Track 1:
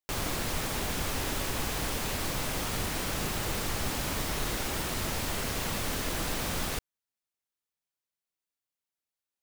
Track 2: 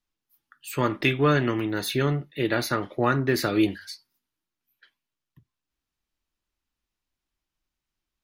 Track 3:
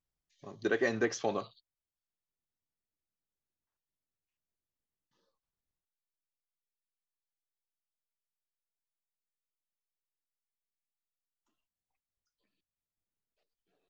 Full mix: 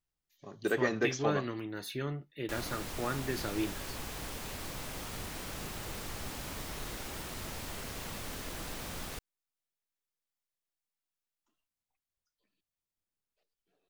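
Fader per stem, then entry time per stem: −9.0, −12.5, −0.5 decibels; 2.40, 0.00, 0.00 seconds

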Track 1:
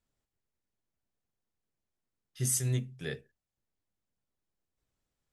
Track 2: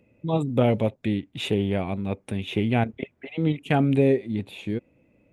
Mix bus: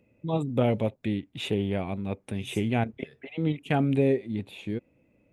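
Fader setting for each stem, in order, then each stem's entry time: −17.5, −3.5 decibels; 0.00, 0.00 seconds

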